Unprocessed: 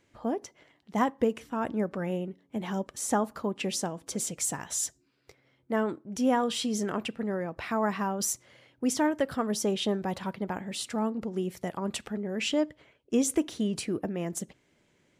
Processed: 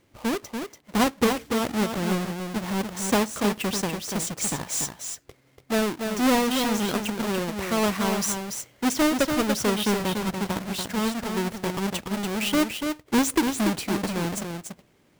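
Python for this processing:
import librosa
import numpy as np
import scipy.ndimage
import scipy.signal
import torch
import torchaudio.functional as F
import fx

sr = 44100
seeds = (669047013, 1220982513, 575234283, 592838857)

y = fx.halfwave_hold(x, sr)
y = y + 10.0 ** (-6.0 / 20.0) * np.pad(y, (int(288 * sr / 1000.0), 0))[:len(y)]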